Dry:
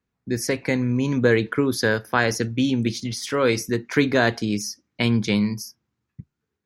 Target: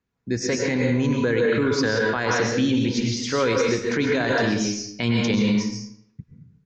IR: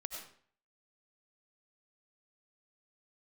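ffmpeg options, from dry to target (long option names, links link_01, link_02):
-filter_complex "[0:a]aresample=16000,aresample=44100[link_01];[1:a]atrim=start_sample=2205,asetrate=33075,aresample=44100[link_02];[link_01][link_02]afir=irnorm=-1:irlink=0,alimiter=limit=-15dB:level=0:latency=1:release=28,volume=2.5dB"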